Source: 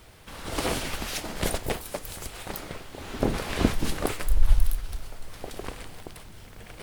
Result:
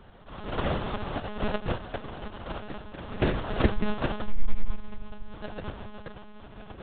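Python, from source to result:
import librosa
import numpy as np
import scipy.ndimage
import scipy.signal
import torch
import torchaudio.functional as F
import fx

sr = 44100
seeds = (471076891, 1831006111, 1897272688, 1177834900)

y = fx.sample_hold(x, sr, seeds[0], rate_hz=2200.0, jitter_pct=20)
y = fx.lpc_monotone(y, sr, seeds[1], pitch_hz=210.0, order=10)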